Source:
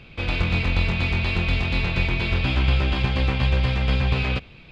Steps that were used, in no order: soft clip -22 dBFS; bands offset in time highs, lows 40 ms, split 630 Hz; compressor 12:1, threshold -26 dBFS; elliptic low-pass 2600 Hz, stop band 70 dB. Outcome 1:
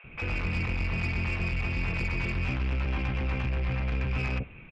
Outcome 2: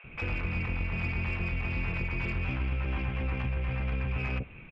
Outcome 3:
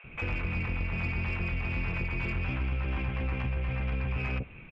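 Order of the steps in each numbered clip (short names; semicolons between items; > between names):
elliptic low-pass > soft clip > compressor > bands offset in time; elliptic low-pass > compressor > soft clip > bands offset in time; elliptic low-pass > compressor > bands offset in time > soft clip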